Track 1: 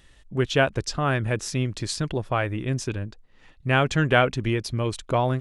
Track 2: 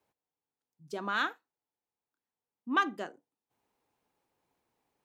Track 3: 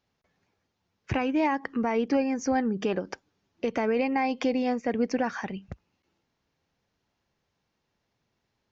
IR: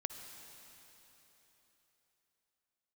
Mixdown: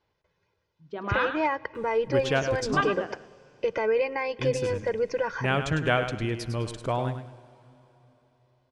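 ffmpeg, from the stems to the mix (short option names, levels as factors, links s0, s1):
-filter_complex "[0:a]adelay=1750,volume=0.422,asplit=3[s0][s1][s2];[s0]atrim=end=2.81,asetpts=PTS-STARTPTS,afade=t=out:st=2.806:d=0.004:c=hsin[s3];[s1]atrim=start=2.81:end=4.39,asetpts=PTS-STARTPTS,volume=0[s4];[s2]atrim=start=4.39,asetpts=PTS-STARTPTS,afade=t=in:d=0.004:c=hsin[s5];[s3][s4][s5]concat=n=3:v=0:a=1,asplit=3[s6][s7][s8];[s7]volume=0.335[s9];[s8]volume=0.447[s10];[1:a]lowpass=f=3200:w=0.5412,lowpass=f=3200:w=1.3066,volume=1.26,asplit=2[s11][s12];[s12]volume=0.398[s13];[2:a]lowpass=5100,aecho=1:1:2:0.92,volume=0.668,asplit=2[s14][s15];[s15]volume=0.224[s16];[3:a]atrim=start_sample=2205[s17];[s9][s16]amix=inputs=2:normalize=0[s18];[s18][s17]afir=irnorm=-1:irlink=0[s19];[s10][s13]amix=inputs=2:normalize=0,aecho=0:1:103|206|309|412:1|0.3|0.09|0.027[s20];[s6][s11][s14][s19][s20]amix=inputs=5:normalize=0"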